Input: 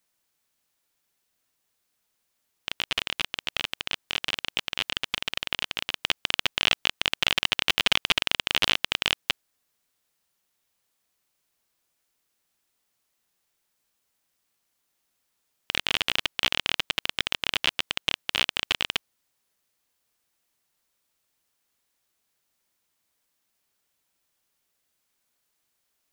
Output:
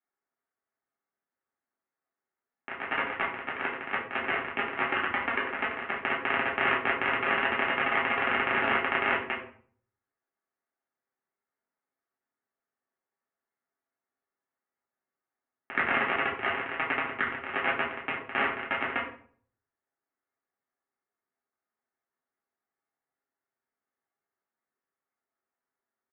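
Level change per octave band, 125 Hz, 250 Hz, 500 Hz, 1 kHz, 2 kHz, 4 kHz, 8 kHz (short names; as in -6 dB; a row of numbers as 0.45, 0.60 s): -2.5 dB, +5.0 dB, +6.5 dB, +7.0 dB, +1.5 dB, -16.0 dB, under -40 dB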